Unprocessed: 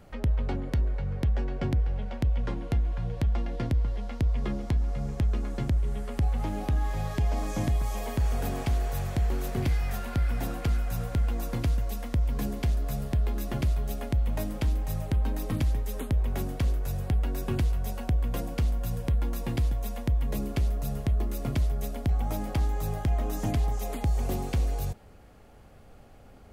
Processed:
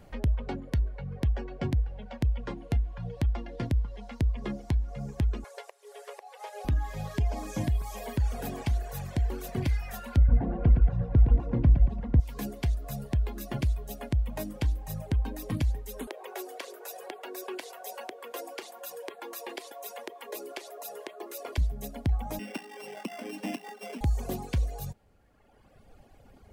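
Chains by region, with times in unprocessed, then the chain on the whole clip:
0:05.44–0:06.65: linear delta modulator 64 kbit/s, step −47 dBFS + downward compressor 3 to 1, threshold −26 dBFS + linear-phase brick-wall high-pass 390 Hz
0:10.17–0:12.20: low-pass filter 2,100 Hz + tilt shelving filter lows +6.5 dB, about 860 Hz + repeating echo 115 ms, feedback 59%, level −5 dB
0:16.07–0:21.58: Chebyshev high-pass filter 380 Hz, order 4 + envelope flattener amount 50%
0:22.39–0:24.01: samples sorted by size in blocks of 16 samples + Butterworth high-pass 190 Hz 72 dB per octave + high-shelf EQ 3,300 Hz −6 dB
whole clip: notch filter 1,300 Hz, Q 12; reverb reduction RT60 1.8 s

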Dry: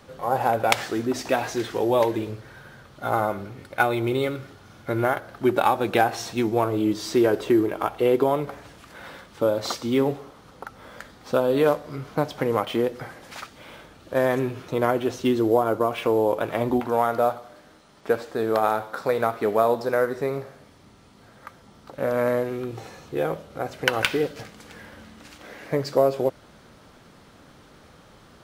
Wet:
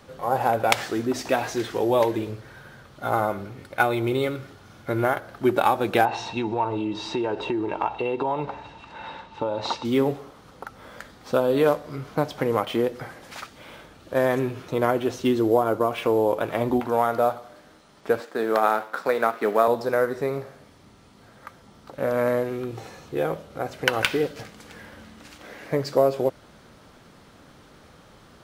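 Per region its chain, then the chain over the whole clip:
0:06.05–0:09.85: high-frequency loss of the air 120 metres + downward compressor 5 to 1, threshold −23 dBFS + hollow resonant body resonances 900/2,700/3,800 Hz, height 17 dB
0:18.20–0:19.68: mu-law and A-law mismatch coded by A + high-pass filter 170 Hz 24 dB per octave + parametric band 1,600 Hz +4.5 dB 1.2 octaves
whole clip: no processing

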